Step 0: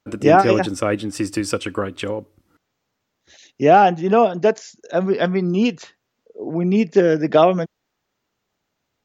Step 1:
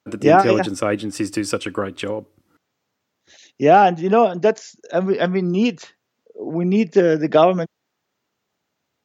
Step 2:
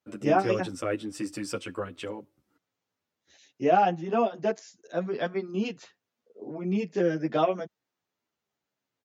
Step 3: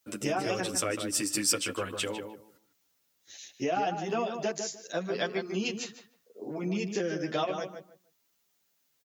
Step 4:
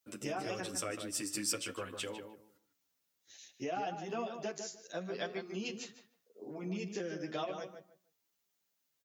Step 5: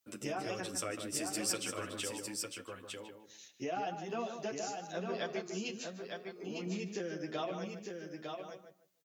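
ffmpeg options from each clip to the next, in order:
-af "highpass=98"
-filter_complex "[0:a]asplit=2[a][b];[b]adelay=9.8,afreqshift=-0.96[c];[a][c]amix=inputs=2:normalize=1,volume=-7.5dB"
-filter_complex "[0:a]acompressor=threshold=-29dB:ratio=5,crystalizer=i=5.5:c=0,asplit=2[a][b];[b]adelay=151,lowpass=f=2k:p=1,volume=-6.5dB,asplit=2[c][d];[d]adelay=151,lowpass=f=2k:p=1,volume=0.21,asplit=2[e][f];[f]adelay=151,lowpass=f=2k:p=1,volume=0.21[g];[c][e][g]amix=inputs=3:normalize=0[h];[a][h]amix=inputs=2:normalize=0"
-af "flanger=delay=7.4:depth=4.1:regen=87:speed=0.51:shape=triangular,volume=-3.5dB"
-af "aecho=1:1:904:0.562"

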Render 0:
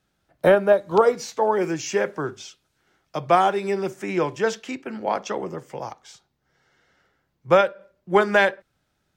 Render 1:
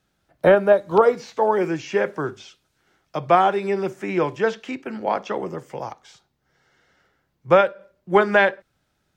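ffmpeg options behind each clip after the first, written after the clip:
-filter_complex "[0:a]acrossover=split=3900[a][b];[b]acompressor=threshold=-53dB:ratio=4:attack=1:release=60[c];[a][c]amix=inputs=2:normalize=0,volume=1.5dB"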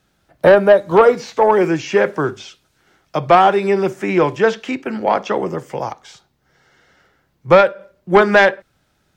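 -af "asoftclip=type=tanh:threshold=-9.5dB,volume=7.5dB"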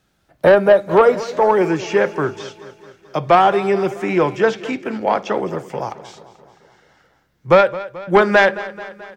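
-af "aecho=1:1:217|434|651|868|1085|1302:0.15|0.0883|0.0521|0.0307|0.0181|0.0107,volume=-1.5dB"

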